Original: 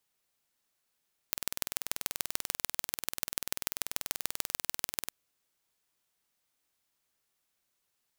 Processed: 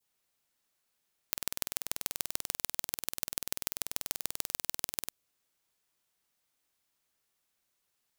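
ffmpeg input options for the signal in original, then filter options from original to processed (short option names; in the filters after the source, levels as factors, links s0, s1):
-f lavfi -i "aevalsrc='0.841*eq(mod(n,2151),0)*(0.5+0.5*eq(mod(n,6453),0))':d=3.78:s=44100"
-af "adynamicequalizer=threshold=0.00141:dfrequency=1600:dqfactor=0.71:tfrequency=1600:tqfactor=0.71:attack=5:release=100:ratio=0.375:range=2:mode=cutabove:tftype=bell"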